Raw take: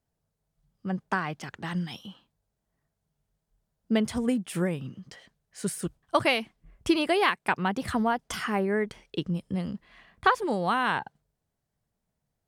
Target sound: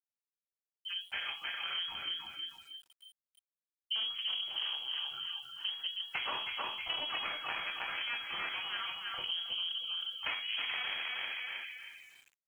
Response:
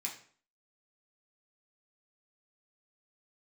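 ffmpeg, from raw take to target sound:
-filter_complex "[0:a]aecho=1:1:316|632|948|1264|1580:0.501|0.21|0.0884|0.0371|0.0156,asoftclip=type=tanh:threshold=-19.5dB[link_01];[1:a]atrim=start_sample=2205,afade=type=out:start_time=0.2:duration=0.01,atrim=end_sample=9261[link_02];[link_01][link_02]afir=irnorm=-1:irlink=0,dynaudnorm=framelen=390:gausssize=9:maxgain=5dB,asettb=1/sr,asplit=3[link_03][link_04][link_05];[link_03]atrim=end=7.194[link_06];[link_04]atrim=start=7.19:end=9.24,asetpts=PTS-STARTPTS,afade=type=in:duration=0.004:curve=qsin,afade=type=out:start_time=2.046:duration=0.004:curve=qsin,highpass=frequency=790:poles=1[link_07];[link_05]atrim=start=9.236[link_08];[link_06][link_07]acrossfade=duration=0.004:curve1=hsin:curve2=qsin[link_09];[link_09][link_08]acrossfade=duration=0.004:curve1=qsin:curve2=hsin,aeval=exprs='0.316*(cos(1*acos(clip(val(0)/0.316,-1,1)))-cos(1*PI/2))+0.126*(cos(4*acos(clip(val(0)/0.316,-1,1)))-cos(4*PI/2))':channel_layout=same,afftdn=noise_reduction=20:noise_floor=-47,lowpass=frequency=2800:width_type=q:width=0.5098,lowpass=frequency=2800:width_type=q:width=0.6013,lowpass=frequency=2800:width_type=q:width=0.9,lowpass=frequency=2800:width_type=q:width=2.563,afreqshift=-3300,acompressor=threshold=-29dB:ratio=6,aeval=exprs='val(0)*gte(abs(val(0)),0.00224)':channel_layout=same,volume=-5.5dB"

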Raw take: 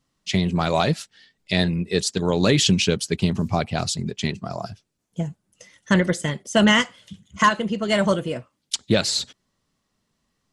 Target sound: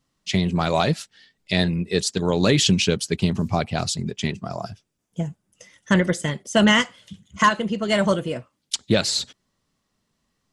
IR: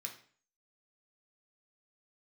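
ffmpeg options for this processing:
-filter_complex "[0:a]asettb=1/sr,asplit=3[link_01][link_02][link_03];[link_01]atrim=end=4.064[link_04];[link_02]atrim=start=4.06:end=6.16,asetpts=PTS-STARTPTS,afade=type=in:duration=0.004:curve=qsin,afade=type=out:start_time=2.096:duration=0.004:curve=qsin,bandreject=frequency=4200:width=12[link_05];[link_03]atrim=start=6.156[link_06];[link_04][link_05]acrossfade=duration=0.004:curve1=hsin:curve2=qsin[link_07];[link_07][link_06]acrossfade=duration=0.004:curve1=qsin:curve2=hsin"

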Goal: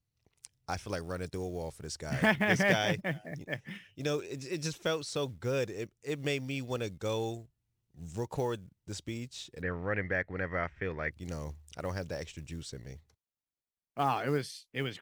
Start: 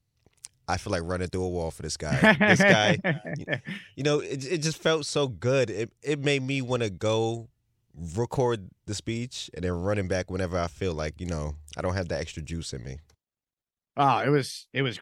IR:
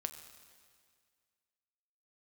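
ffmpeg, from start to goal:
-filter_complex "[0:a]acrusher=bits=7:mode=log:mix=0:aa=0.000001,asplit=3[link_01][link_02][link_03];[link_01]afade=type=out:start_time=9.61:duration=0.02[link_04];[link_02]lowpass=frequency=1900:width_type=q:width=7,afade=type=in:start_time=9.61:duration=0.02,afade=type=out:start_time=11.1:duration=0.02[link_05];[link_03]afade=type=in:start_time=11.1:duration=0.02[link_06];[link_04][link_05][link_06]amix=inputs=3:normalize=0,volume=-8dB"

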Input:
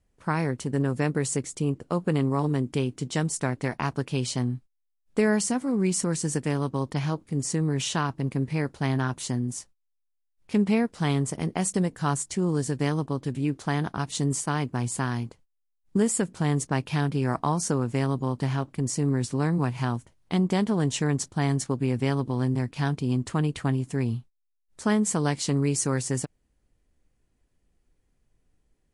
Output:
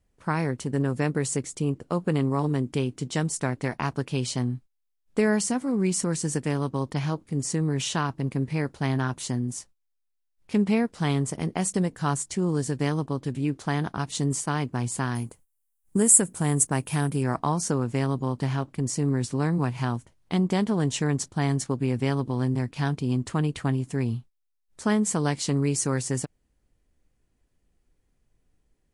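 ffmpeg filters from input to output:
ffmpeg -i in.wav -filter_complex "[0:a]asettb=1/sr,asplit=3[link_01][link_02][link_03];[link_01]atrim=end=15.154[link_04];[link_02]atrim=start=15.15:end=17.23,asetpts=PTS-STARTPTS,afade=type=in:duration=0.004:curve=qsin,afade=type=out:start_time=2.076:duration=0.004:curve=qsin,highshelf=frequency=6700:width_type=q:width=1.5:gain=13[link_05];[link_03]atrim=start=17.226[link_06];[link_04][link_05]acrossfade=duration=0.004:curve1=hsin:curve2=qsin[link_07];[link_07][link_06]acrossfade=duration=0.004:curve1=qsin:curve2=hsin" out.wav

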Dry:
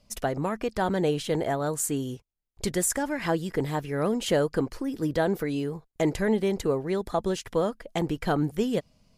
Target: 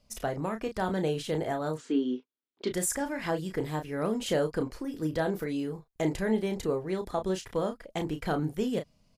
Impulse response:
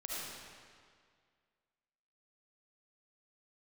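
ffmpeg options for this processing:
-filter_complex "[0:a]asplit=3[link_01][link_02][link_03];[link_01]afade=type=out:start_time=1.76:duration=0.02[link_04];[link_02]highpass=frequency=230:width=0.5412,highpass=frequency=230:width=1.3066,equalizer=frequency=260:width_type=q:width=4:gain=10,equalizer=frequency=380:width_type=q:width=4:gain=6,equalizer=frequency=740:width_type=q:width=4:gain=-4,equalizer=frequency=1400:width_type=q:width=4:gain=3,equalizer=frequency=3400:width_type=q:width=4:gain=5,lowpass=frequency=4300:width=0.5412,lowpass=frequency=4300:width=1.3066,afade=type=in:start_time=1.76:duration=0.02,afade=type=out:start_time=2.69:duration=0.02[link_05];[link_03]afade=type=in:start_time=2.69:duration=0.02[link_06];[link_04][link_05][link_06]amix=inputs=3:normalize=0,asplit=2[link_07][link_08];[link_08]adelay=32,volume=-7.5dB[link_09];[link_07][link_09]amix=inputs=2:normalize=0,volume=-4.5dB"

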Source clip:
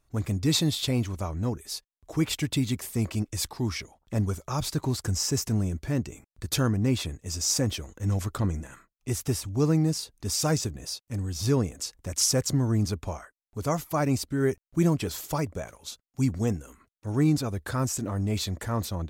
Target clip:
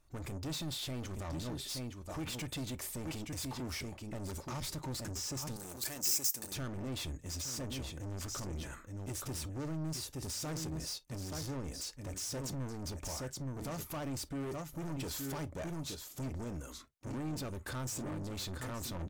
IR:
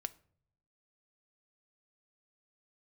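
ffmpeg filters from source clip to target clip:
-filter_complex "[0:a]aecho=1:1:871:0.282,alimiter=limit=-24dB:level=0:latency=1:release=56,asoftclip=type=tanh:threshold=-37dB,asettb=1/sr,asplit=3[link_01][link_02][link_03];[link_01]atrim=end=5.564[link_04];[link_02]atrim=start=5.56:end=6.52,asetpts=PTS-STARTPTS,afade=type=in:duration=0.004:curve=qsin,afade=type=out:start_time=0.956:duration=0.004:curve=qsin,aemphasis=mode=production:type=riaa[link_05];[link_03]atrim=start=6.516[link_06];[link_04][link_05]acrossfade=duration=0.004:curve1=hsin:curve2=qsin[link_07];[link_07][link_06]acrossfade=duration=0.004:curve1=qsin:curve2=hsin[link_08];[1:a]atrim=start_sample=2205,atrim=end_sample=3528,asetrate=57330,aresample=44100[link_09];[link_08][link_09]afir=irnorm=-1:irlink=0,volume=4dB"

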